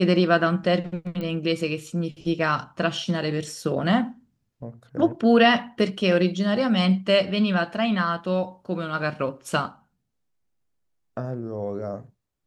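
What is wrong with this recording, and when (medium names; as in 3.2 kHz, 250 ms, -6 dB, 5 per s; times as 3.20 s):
1.21 s: pop -21 dBFS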